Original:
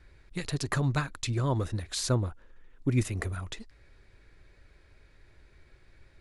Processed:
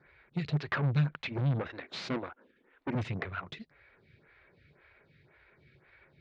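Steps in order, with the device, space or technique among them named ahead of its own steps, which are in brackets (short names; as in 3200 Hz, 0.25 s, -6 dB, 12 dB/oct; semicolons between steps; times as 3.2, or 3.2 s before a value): 1.7–2.95 resonant low shelf 190 Hz -9.5 dB, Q 3; vibe pedal into a guitar amplifier (photocell phaser 1.9 Hz; tube stage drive 35 dB, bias 0.65; speaker cabinet 110–3800 Hz, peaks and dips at 150 Hz +9 dB, 300 Hz -5 dB, 1500 Hz +3 dB, 2200 Hz +5 dB); gain +6.5 dB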